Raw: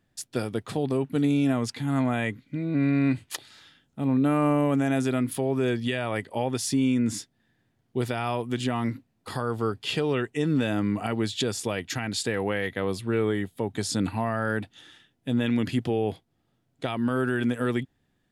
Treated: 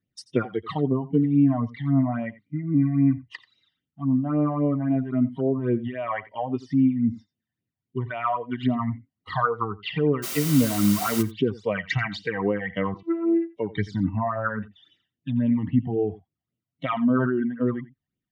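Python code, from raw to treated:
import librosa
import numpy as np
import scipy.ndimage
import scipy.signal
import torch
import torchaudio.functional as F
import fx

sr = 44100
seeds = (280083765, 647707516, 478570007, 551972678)

y = fx.noise_reduce_blind(x, sr, reduce_db=18)
y = fx.env_lowpass_down(y, sr, base_hz=730.0, full_db=-24.0)
y = scipy.signal.sosfilt(scipy.signal.butter(2, 5000.0, 'lowpass', fs=sr, output='sos'), y)
y = fx.dynamic_eq(y, sr, hz=1300.0, q=0.78, threshold_db=-47.0, ratio=4.0, max_db=8)
y = fx.rider(y, sr, range_db=4, speed_s=2.0)
y = fx.phaser_stages(y, sr, stages=12, low_hz=390.0, high_hz=1500.0, hz=3.7, feedback_pct=45)
y = fx.quant_dither(y, sr, seeds[0], bits=6, dither='triangular', at=(10.22, 11.21), fade=0.02)
y = fx.vocoder(y, sr, bands=16, carrier='saw', carrier_hz=334.0, at=(12.94, 13.56))
y = fx.notch_comb(y, sr, f0_hz=850.0)
y = y + 10.0 ** (-18.5 / 20.0) * np.pad(y, (int(87 * sr / 1000.0), 0))[:len(y)]
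y = fx.sustainer(y, sr, db_per_s=27.0, at=(16.91, 17.42))
y = y * librosa.db_to_amplitude(5.5)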